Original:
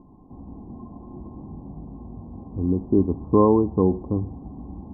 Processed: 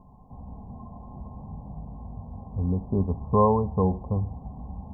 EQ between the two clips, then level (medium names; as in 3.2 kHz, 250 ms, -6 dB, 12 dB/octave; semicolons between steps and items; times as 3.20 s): static phaser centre 780 Hz, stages 4; +2.5 dB